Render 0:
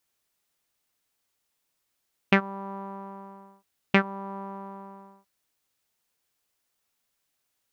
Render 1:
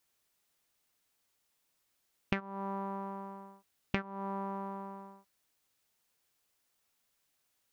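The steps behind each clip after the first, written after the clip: compression 12:1, threshold -30 dBFS, peak gain reduction 15.5 dB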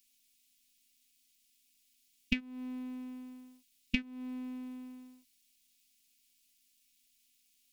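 robot voice 253 Hz; FFT filter 210 Hz 0 dB, 670 Hz -27 dB, 1.1 kHz -29 dB, 1.7 kHz -16 dB, 2.4 kHz +1 dB; trim +8 dB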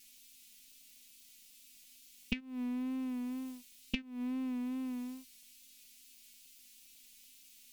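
compression 4:1, threshold -49 dBFS, peak gain reduction 20 dB; wow and flutter 49 cents; trim +12.5 dB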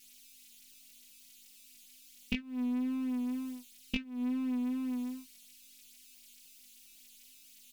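doubling 20 ms -3.5 dB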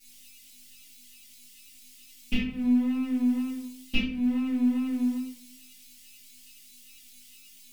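simulated room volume 70 m³, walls mixed, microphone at 2.3 m; trim -4 dB

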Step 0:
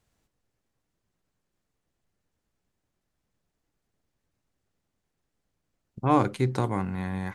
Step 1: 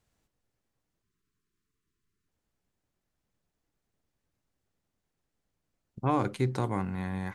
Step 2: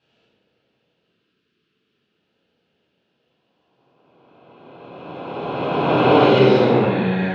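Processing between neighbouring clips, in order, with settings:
spectral selection erased 1.03–2.28 s, 470–970 Hz; peak limiter -13 dBFS, peak gain reduction 5 dB; trim -2.5 dB
reverse spectral sustain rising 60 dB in 2.74 s; cabinet simulation 270–4100 Hz, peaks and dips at 290 Hz -5 dB, 460 Hz +5 dB, 750 Hz -4 dB, 1.1 kHz -10 dB, 2 kHz -8 dB, 2.9 kHz +8 dB; reverberation RT60 1.4 s, pre-delay 7 ms, DRR -10.5 dB; trim +1.5 dB

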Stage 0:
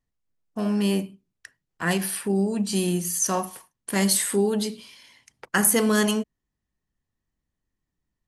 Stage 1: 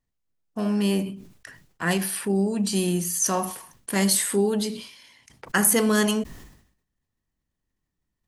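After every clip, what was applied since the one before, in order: decay stretcher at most 86 dB/s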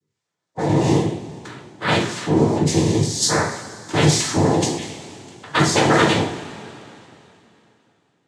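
coarse spectral quantiser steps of 30 dB; noise-vocoded speech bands 6; two-slope reverb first 0.47 s, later 3.1 s, from -18 dB, DRR -2 dB; trim +3 dB

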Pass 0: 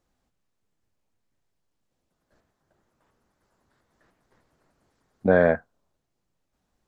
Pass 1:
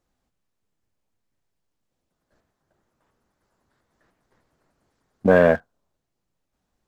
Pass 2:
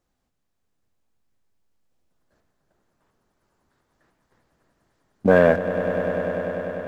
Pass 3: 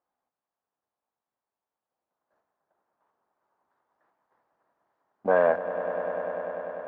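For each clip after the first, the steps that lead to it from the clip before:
waveshaping leveller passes 1; trim +1 dB
echo with a slow build-up 99 ms, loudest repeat 5, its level -13.5 dB
band-pass filter 890 Hz, Q 1.7

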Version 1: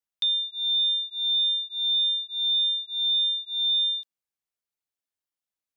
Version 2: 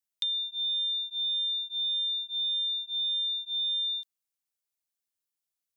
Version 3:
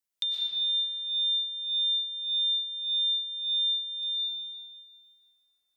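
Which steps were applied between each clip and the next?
treble shelf 3.5 kHz +10.5 dB; compression, threshold -23 dBFS, peak gain reduction 6.5 dB; trim -5.5 dB
reverberation RT60 4.5 s, pre-delay 80 ms, DRR -5 dB

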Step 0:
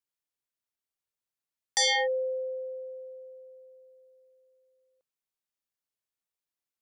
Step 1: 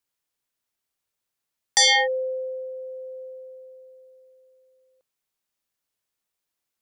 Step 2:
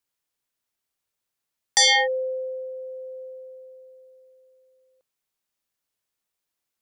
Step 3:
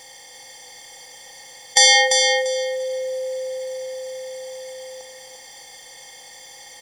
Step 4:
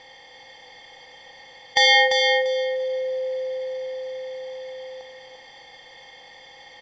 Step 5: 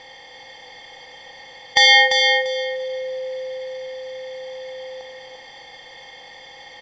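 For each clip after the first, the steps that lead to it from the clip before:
dynamic bell 450 Hz, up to -6 dB, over -44 dBFS, Q 1.6; trim +8 dB
no audible change
spectral levelling over time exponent 0.4; feedback delay 344 ms, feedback 22%, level -5.5 dB; reverberation RT60 1.8 s, pre-delay 7 ms, DRR 13.5 dB; trim +3 dB
low-pass 3.8 kHz 24 dB/octave
dynamic bell 520 Hz, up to -6 dB, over -37 dBFS, Q 1.2; trim +4.5 dB

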